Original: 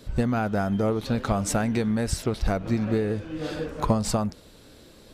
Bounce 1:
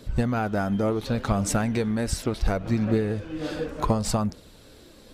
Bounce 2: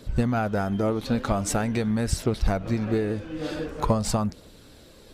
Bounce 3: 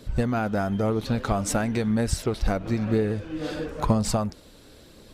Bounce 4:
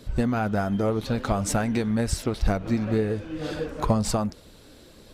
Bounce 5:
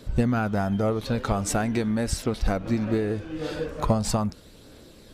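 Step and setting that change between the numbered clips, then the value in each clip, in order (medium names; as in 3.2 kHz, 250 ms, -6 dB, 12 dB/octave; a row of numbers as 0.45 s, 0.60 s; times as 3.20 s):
phaser, rate: 0.69 Hz, 0.45 Hz, 1 Hz, 2 Hz, 0.21 Hz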